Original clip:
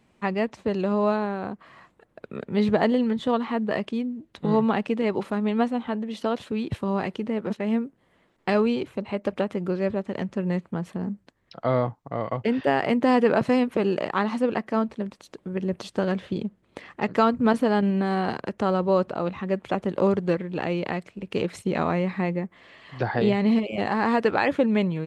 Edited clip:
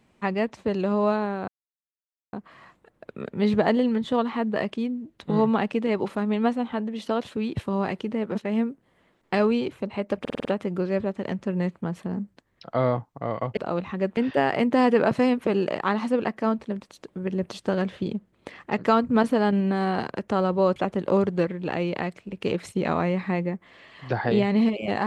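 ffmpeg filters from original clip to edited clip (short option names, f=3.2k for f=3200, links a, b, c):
-filter_complex "[0:a]asplit=10[a][b][c][d][e][f][g][h][i][j];[a]atrim=end=1.48,asetpts=PTS-STARTPTS,afade=t=out:st=1.476:d=0.004:c=hsin,apad=pad_dur=0.85[k];[b]atrim=start=1.48:end=9.402,asetpts=PTS-STARTPTS,afade=t=in:d=0.004:c=hsin[l];[c]atrim=start=9.348:end=9.402[m];[d]atrim=start=9.348:end=9.402[n];[e]atrim=start=9.348:end=9.402[o];[f]atrim=start=9.348:end=9.402[p];[g]atrim=start=9.348:end=12.472[q];[h]atrim=start=19.058:end=19.662[r];[i]atrim=start=12.468:end=19.062[s];[j]atrim=start=19.658[t];[k][l]concat=n=2:v=0:a=1[u];[u][m]acrossfade=d=0.004:c1=hsin:c2=hsin[v];[v][n]acrossfade=d=0.004:c1=hsin:c2=hsin[w];[w][o]acrossfade=d=0.004:c1=hsin:c2=hsin[x];[x][p]acrossfade=d=0.004:c1=hsin:c2=hsin[y];[y][q]acrossfade=d=0.004:c1=hsin:c2=hsin[z];[z][r]acrossfade=d=0.004:c1=hsin:c2=hsin[aa];[aa][s]acrossfade=d=0.004:c1=hsin:c2=hsin[ab];[ab][t]acrossfade=d=0.004:c1=hsin:c2=hsin"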